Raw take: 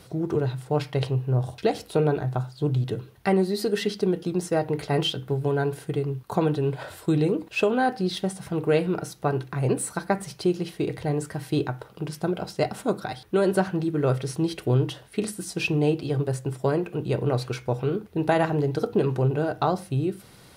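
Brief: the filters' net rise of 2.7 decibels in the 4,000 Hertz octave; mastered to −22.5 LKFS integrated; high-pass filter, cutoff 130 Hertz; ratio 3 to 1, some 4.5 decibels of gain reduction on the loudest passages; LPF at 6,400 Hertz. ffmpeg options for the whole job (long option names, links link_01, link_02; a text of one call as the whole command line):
ffmpeg -i in.wav -af "highpass=130,lowpass=6400,equalizer=frequency=4000:width_type=o:gain=4,acompressor=threshold=-23dB:ratio=3,volume=7dB" out.wav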